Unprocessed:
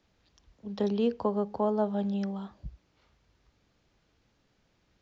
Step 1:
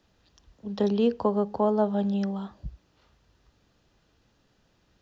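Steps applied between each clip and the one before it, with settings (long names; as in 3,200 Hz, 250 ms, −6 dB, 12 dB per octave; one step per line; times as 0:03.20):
notch filter 2,200 Hz, Q 8.8
level +4 dB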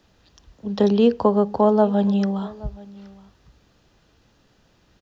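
single-tap delay 823 ms −22 dB
level +7 dB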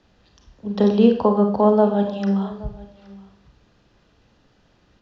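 high-frequency loss of the air 83 metres
on a send at −4.5 dB: convolution reverb RT60 0.50 s, pre-delay 31 ms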